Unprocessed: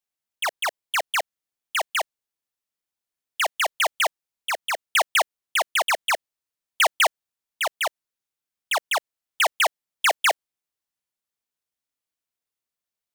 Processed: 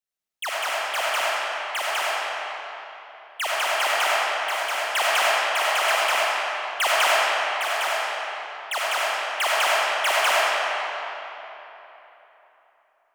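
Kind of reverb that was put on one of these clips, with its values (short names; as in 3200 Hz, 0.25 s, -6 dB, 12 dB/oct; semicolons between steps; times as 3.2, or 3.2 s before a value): digital reverb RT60 3.6 s, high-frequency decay 0.7×, pre-delay 20 ms, DRR -7 dB; gain -5 dB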